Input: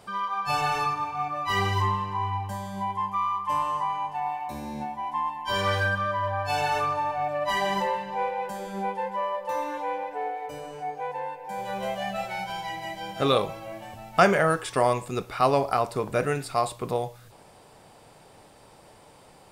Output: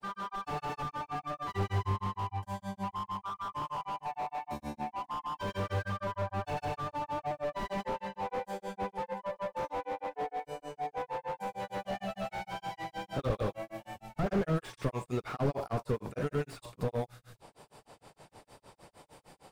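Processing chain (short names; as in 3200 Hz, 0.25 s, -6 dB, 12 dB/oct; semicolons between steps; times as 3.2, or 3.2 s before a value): grains 0.145 s, grains 6.5/s, pitch spread up and down by 0 st; slew limiter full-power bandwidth 19 Hz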